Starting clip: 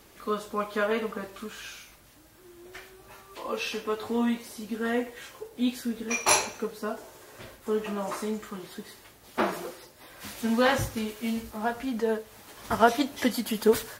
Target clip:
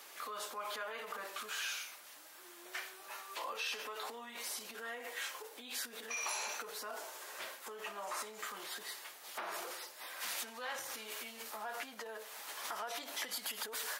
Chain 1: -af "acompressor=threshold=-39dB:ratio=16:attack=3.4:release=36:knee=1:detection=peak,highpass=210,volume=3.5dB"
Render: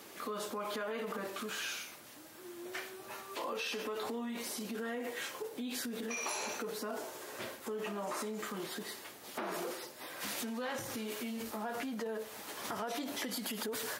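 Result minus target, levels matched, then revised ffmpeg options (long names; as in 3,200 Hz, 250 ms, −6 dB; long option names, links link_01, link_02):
250 Hz band +15.5 dB
-af "acompressor=threshold=-39dB:ratio=16:attack=3.4:release=36:knee=1:detection=peak,highpass=770,volume=3.5dB"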